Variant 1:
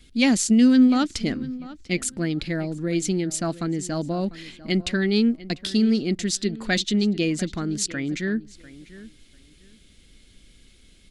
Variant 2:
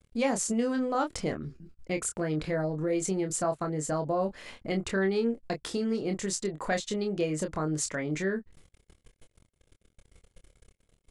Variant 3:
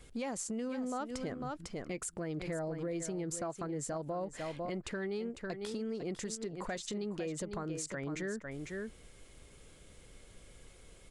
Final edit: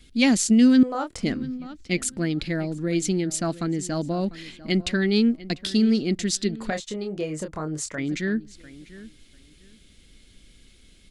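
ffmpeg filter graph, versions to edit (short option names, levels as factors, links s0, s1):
-filter_complex "[1:a]asplit=2[s0][s1];[0:a]asplit=3[s2][s3][s4];[s2]atrim=end=0.832[s5];[s0]atrim=start=0.828:end=1.232[s6];[s3]atrim=start=1.228:end=6.702[s7];[s1]atrim=start=6.698:end=7.982[s8];[s4]atrim=start=7.978[s9];[s5][s6]acrossfade=d=0.004:c1=hsin:c2=hsin[s10];[s10][s7]acrossfade=d=0.004:c1=hsin:c2=hsin[s11];[s11][s8]acrossfade=d=0.004:c1=hsin:c2=hsin[s12];[s12][s9]acrossfade=d=0.004:c1=hsin:c2=hsin"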